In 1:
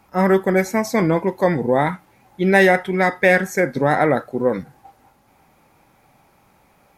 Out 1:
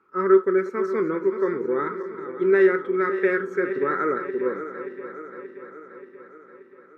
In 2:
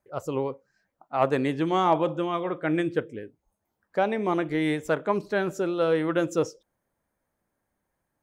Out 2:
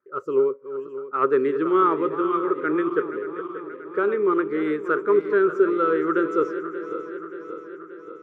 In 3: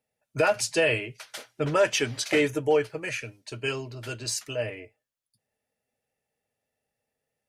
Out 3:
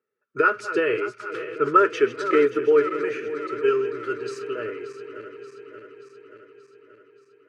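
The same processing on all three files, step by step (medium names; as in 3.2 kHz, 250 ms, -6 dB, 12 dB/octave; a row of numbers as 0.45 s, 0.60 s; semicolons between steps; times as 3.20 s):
backward echo that repeats 290 ms, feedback 77%, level -11.5 dB; two resonant band-passes 720 Hz, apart 1.7 oct; normalise loudness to -23 LUFS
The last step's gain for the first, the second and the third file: +3.0 dB, +12.0 dB, +13.5 dB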